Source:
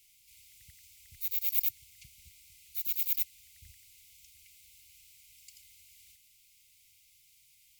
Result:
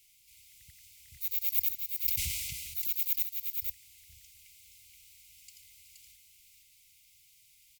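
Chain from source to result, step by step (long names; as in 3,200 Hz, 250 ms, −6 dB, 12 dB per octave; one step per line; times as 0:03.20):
single-tap delay 473 ms −4.5 dB
0:02.05–0:02.88: level that may fall only so fast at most 24 dB per second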